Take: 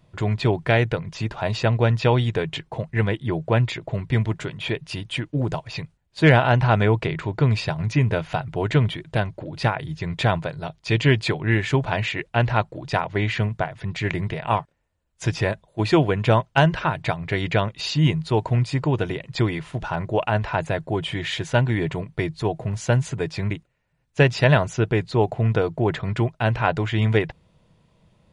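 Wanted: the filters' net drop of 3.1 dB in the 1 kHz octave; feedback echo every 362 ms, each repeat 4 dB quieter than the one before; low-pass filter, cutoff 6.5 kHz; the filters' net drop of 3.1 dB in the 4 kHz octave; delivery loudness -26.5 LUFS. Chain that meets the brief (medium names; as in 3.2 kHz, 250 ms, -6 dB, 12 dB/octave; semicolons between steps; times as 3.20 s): low-pass 6.5 kHz; peaking EQ 1 kHz -4 dB; peaking EQ 4 kHz -3.5 dB; feedback delay 362 ms, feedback 63%, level -4 dB; trim -5 dB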